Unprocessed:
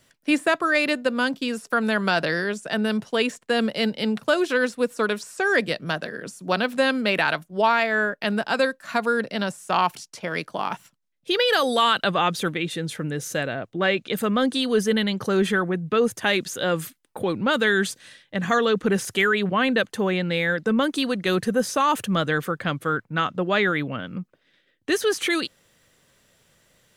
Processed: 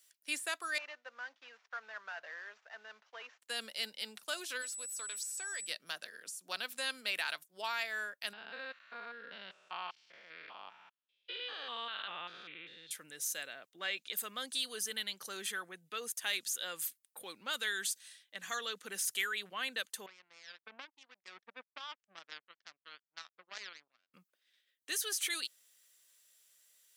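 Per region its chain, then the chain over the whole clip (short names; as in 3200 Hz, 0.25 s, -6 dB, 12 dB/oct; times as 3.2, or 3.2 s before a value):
0.78–3.42 CVSD 32 kbps + three-band isolator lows -21 dB, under 520 Hz, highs -21 dB, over 2100 Hz
4.61–5.66 HPF 450 Hz 6 dB/oct + compressor 2:1, threshold -29 dBFS + whine 7900 Hz -39 dBFS
8.33–12.91 stepped spectrum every 0.2 s + LPF 3300 Hz 24 dB/oct
20.06–24.14 LPF 2300 Hz 24 dB/oct + power-law curve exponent 3
whole clip: HPF 140 Hz; de-esser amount 40%; differentiator; gain -2.5 dB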